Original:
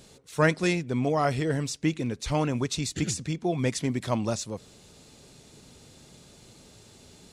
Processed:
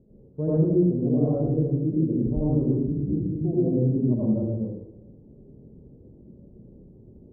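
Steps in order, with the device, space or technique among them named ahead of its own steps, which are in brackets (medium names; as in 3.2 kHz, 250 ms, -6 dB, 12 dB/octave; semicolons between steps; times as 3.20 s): next room (low-pass 450 Hz 24 dB/octave; reverberation RT60 0.95 s, pre-delay 74 ms, DRR -7.5 dB); trim -2.5 dB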